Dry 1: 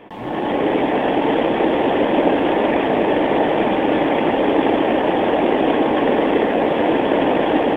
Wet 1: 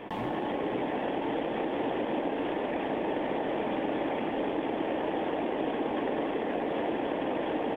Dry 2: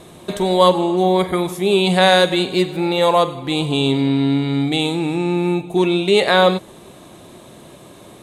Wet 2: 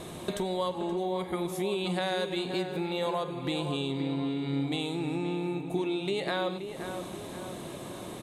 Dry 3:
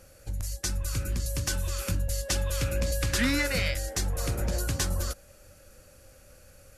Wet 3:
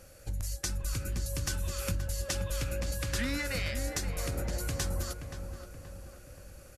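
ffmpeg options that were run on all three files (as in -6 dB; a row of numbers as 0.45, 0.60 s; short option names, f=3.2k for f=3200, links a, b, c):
-filter_complex "[0:a]acompressor=threshold=-30dB:ratio=6,asplit=2[a][b];[b]adelay=526,lowpass=f=2.1k:p=1,volume=-8dB,asplit=2[c][d];[d]adelay=526,lowpass=f=2.1k:p=1,volume=0.52,asplit=2[e][f];[f]adelay=526,lowpass=f=2.1k:p=1,volume=0.52,asplit=2[g][h];[h]adelay=526,lowpass=f=2.1k:p=1,volume=0.52,asplit=2[i][j];[j]adelay=526,lowpass=f=2.1k:p=1,volume=0.52,asplit=2[k][l];[l]adelay=526,lowpass=f=2.1k:p=1,volume=0.52[m];[c][e][g][i][k][m]amix=inputs=6:normalize=0[n];[a][n]amix=inputs=2:normalize=0"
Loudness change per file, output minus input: -14.0, -15.5, -5.0 LU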